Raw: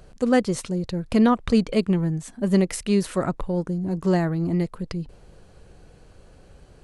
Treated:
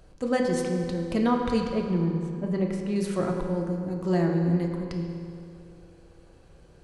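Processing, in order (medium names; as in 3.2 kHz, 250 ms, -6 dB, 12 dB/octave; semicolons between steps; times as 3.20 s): 1.71–2.96 s: low-pass 1.3 kHz 6 dB/octave; on a send: reverberation RT60 2.5 s, pre-delay 3 ms, DRR 1 dB; on the sum: trim -6 dB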